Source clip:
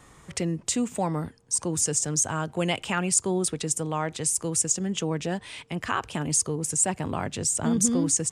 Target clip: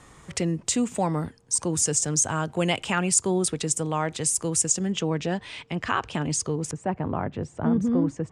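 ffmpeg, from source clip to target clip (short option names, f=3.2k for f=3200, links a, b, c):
-af "asetnsamples=n=441:p=0,asendcmd='4.92 lowpass f 5700;6.71 lowpass f 1400',lowpass=11k,volume=2dB"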